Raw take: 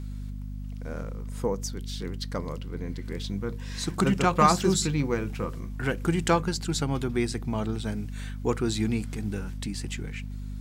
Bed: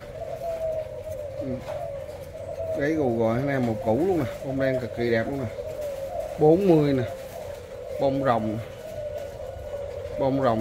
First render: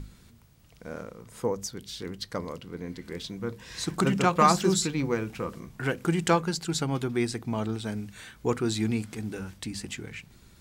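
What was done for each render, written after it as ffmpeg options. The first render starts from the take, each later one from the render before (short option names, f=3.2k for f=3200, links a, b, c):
-af "bandreject=f=50:t=h:w=6,bandreject=f=100:t=h:w=6,bandreject=f=150:t=h:w=6,bandreject=f=200:t=h:w=6,bandreject=f=250:t=h:w=6"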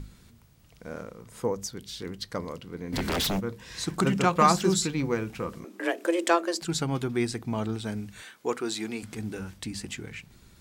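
-filter_complex "[0:a]asplit=3[a][b][c];[a]afade=t=out:st=2.92:d=0.02[d];[b]aeval=exprs='0.0668*sin(PI/2*5.01*val(0)/0.0668)':c=same,afade=t=in:st=2.92:d=0.02,afade=t=out:st=3.39:d=0.02[e];[c]afade=t=in:st=3.39:d=0.02[f];[d][e][f]amix=inputs=3:normalize=0,asettb=1/sr,asplit=3[g][h][i];[g]atrim=end=5.644[j];[h]atrim=start=5.64:end=6.62,asetpts=PTS-STARTPTS,afade=t=in:d=0.004:c=qsin,afade=t=out:st=0.976:d=0.004:c=qsin,afreqshift=170[k];[i]atrim=start=6.616[l];[j][k]acrossfade=d=0.004:c1=hsin:c2=qsin[m];[m][l]acrossfade=d=0.004:c1=qsin:c2=hsin,asettb=1/sr,asplit=3[n][o][p];[n]atrim=end=8.224[q];[o]atrim=start=8.22:end=9.03,asetpts=PTS-STARTPTS,afade=t=in:d=0.004:c=qsin,afade=t=out:st=0.806:d=0.004:c=qsin,highpass=340[r];[p]atrim=start=9.026[s];[q][r]acrossfade=d=0.004:c1=hsin:c2=qsin[t];[t][s]acrossfade=d=0.004:c1=qsin:c2=hsin"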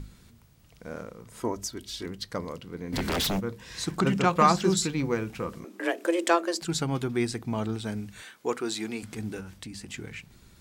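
-filter_complex "[0:a]asettb=1/sr,asplit=3[a][b][c];[a]atrim=end=1.404[d];[b]atrim=start=1.4:end=2.06,asetpts=PTS-STARTPTS,afade=t=in:d=0.004:c=qsin,afade=t=out:st=0.656:d=0.004:c=qsin,aecho=1:1:3.1:0.71,atrim=end_sample=29106[e];[c]atrim=start=2.056[f];[d][e]acrossfade=d=0.004:c1=hsin:c2=qsin[g];[g][f]acrossfade=d=0.004:c1=qsin:c2=hsin,asettb=1/sr,asplit=3[h][i][j];[h]atrim=end=3.924[k];[i]atrim=start=3.92:end=4.77,asetpts=PTS-STARTPTS,afade=t=in:d=0.004:c=qsin,afade=t=out:st=0.846:d=0.004:c=qsin,acrossover=split=6200[l][m];[m]acompressor=threshold=-47dB:ratio=4:attack=1:release=60[n];[l][n]amix=inputs=2:normalize=0[o];[j]atrim=start=4.766[p];[k][o]acrossfade=d=0.004:c1=hsin:c2=qsin[q];[q][p]acrossfade=d=0.004:c1=qsin:c2=hsin,asettb=1/sr,asplit=3[r][s][t];[r]atrim=end=9.404[u];[s]atrim=start=9.4:end=9.94,asetpts=PTS-STARTPTS,afade=t=in:d=0.004:c=qsin,afade=t=out:st=0.536:d=0.004:c=qsin,acompressor=threshold=-40dB:ratio=2:attack=3.2:release=140:knee=1:detection=peak[v];[t]atrim=start=9.936[w];[u][v]acrossfade=d=0.004:c1=hsin:c2=qsin[x];[x][w]acrossfade=d=0.004:c1=qsin:c2=hsin"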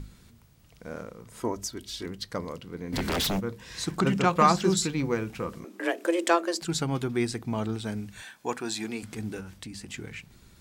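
-filter_complex "[0:a]asettb=1/sr,asplit=3[a][b][c];[a]atrim=end=8.174[d];[b]atrim=start=8.17:end=8.84,asetpts=PTS-STARTPTS,afade=t=in:d=0.004:c=qsin,afade=t=out:st=0.666:d=0.004:c=qsin,aecho=1:1:1.2:0.46,atrim=end_sample=29547[e];[c]atrim=start=8.836[f];[d][e]acrossfade=d=0.004:c1=hsin:c2=qsin[g];[g][f]acrossfade=d=0.004:c1=qsin:c2=hsin"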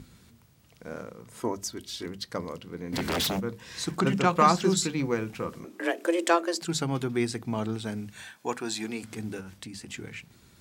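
-af "highpass=77,bandreject=f=50:t=h:w=6,bandreject=f=100:t=h:w=6,bandreject=f=150:t=h:w=6,bandreject=f=200:t=h:w=6"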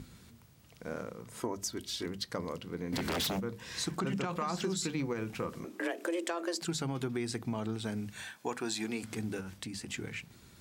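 -af "alimiter=limit=-19.5dB:level=0:latency=1:release=36,acompressor=threshold=-32dB:ratio=3"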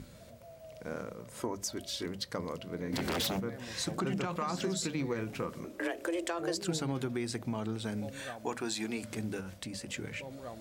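-filter_complex "[1:a]volume=-22.5dB[a];[0:a][a]amix=inputs=2:normalize=0"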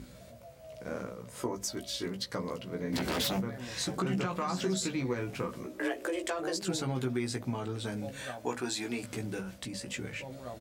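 -filter_complex "[0:a]asplit=2[a][b];[b]adelay=16,volume=-4dB[c];[a][c]amix=inputs=2:normalize=0"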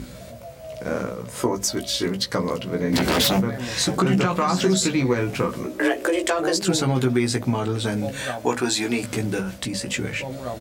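-af "volume=12dB"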